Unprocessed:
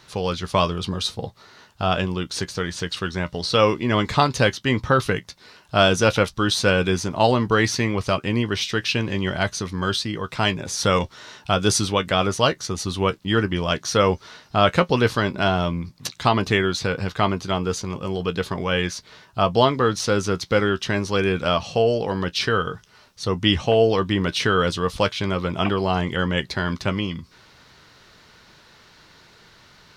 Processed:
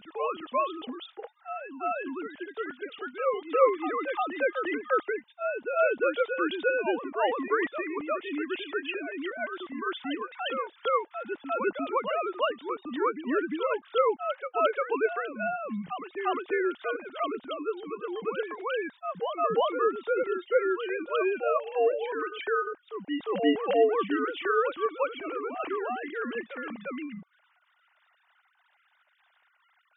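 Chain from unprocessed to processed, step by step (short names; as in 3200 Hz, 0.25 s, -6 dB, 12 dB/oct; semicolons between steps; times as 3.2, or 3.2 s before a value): sine-wave speech; reverse echo 0.351 s -6.5 dB; gain -8.5 dB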